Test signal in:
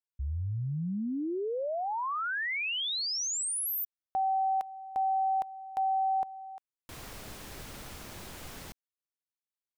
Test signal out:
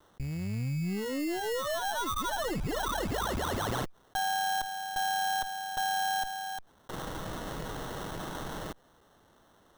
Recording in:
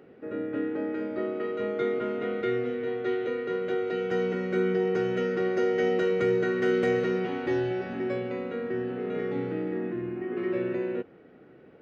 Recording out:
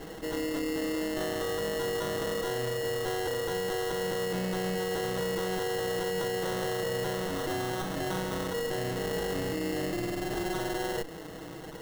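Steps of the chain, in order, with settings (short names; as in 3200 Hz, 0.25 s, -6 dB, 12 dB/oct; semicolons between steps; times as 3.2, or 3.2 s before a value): minimum comb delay 6.3 ms; limiter -25 dBFS; sample-rate reducer 2400 Hz, jitter 0%; fast leveller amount 50%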